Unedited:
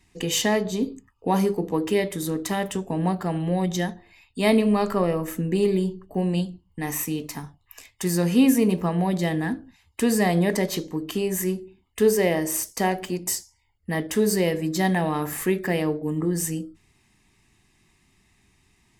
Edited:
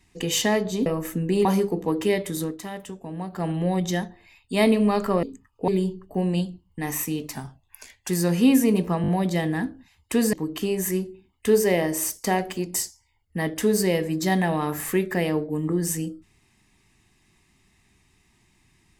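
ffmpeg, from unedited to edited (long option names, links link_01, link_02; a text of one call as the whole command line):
ffmpeg -i in.wav -filter_complex "[0:a]asplit=13[link_01][link_02][link_03][link_04][link_05][link_06][link_07][link_08][link_09][link_10][link_11][link_12][link_13];[link_01]atrim=end=0.862[link_14];[link_02]atrim=start=5.088:end=5.682[link_15];[link_03]atrim=start=1.308:end=2.43,asetpts=PTS-STARTPTS,afade=type=out:start_time=0.972:duration=0.15:silence=0.354813[link_16];[link_04]atrim=start=2.43:end=3.16,asetpts=PTS-STARTPTS,volume=-9dB[link_17];[link_05]atrim=start=3.16:end=5.092,asetpts=PTS-STARTPTS,afade=type=in:duration=0.15:silence=0.354813[link_18];[link_06]atrim=start=0.858:end=1.312[link_19];[link_07]atrim=start=5.678:end=7.334[link_20];[link_08]atrim=start=7.33:end=8.03,asetpts=PTS-STARTPTS,asetrate=40572,aresample=44100,atrim=end_sample=33554,asetpts=PTS-STARTPTS[link_21];[link_09]atrim=start=8.026:end=8.982[link_22];[link_10]atrim=start=8.958:end=8.982[link_23];[link_11]atrim=start=8.958:end=8.982[link_24];[link_12]atrim=start=8.958:end=10.212[link_25];[link_13]atrim=start=10.858[link_26];[link_14][link_15]acrossfade=duration=0.004:curve1=hsin:curve2=hsin[link_27];[link_16][link_17][link_18]concat=n=3:v=0:a=1[link_28];[link_27][link_28]acrossfade=duration=0.004:curve1=hsin:curve2=hsin[link_29];[link_29][link_19]acrossfade=duration=0.004:curve1=hsin:curve2=hsin[link_30];[link_30][link_20]acrossfade=duration=0.004:curve1=hsin:curve2=hsin[link_31];[link_31][link_21]acrossfade=duration=0.004:curve1=hsin:curve2=hsin[link_32];[link_32][link_22]acrossfade=duration=0.004:curve1=hsin:curve2=hsin[link_33];[link_33][link_23]acrossfade=duration=0.004:curve1=hsin:curve2=hsin[link_34];[link_34][link_24]acrossfade=duration=0.004:curve1=hsin:curve2=hsin[link_35];[link_35][link_25]acrossfade=duration=0.004:curve1=hsin:curve2=hsin[link_36];[link_36][link_26]acrossfade=duration=0.004:curve1=hsin:curve2=hsin" out.wav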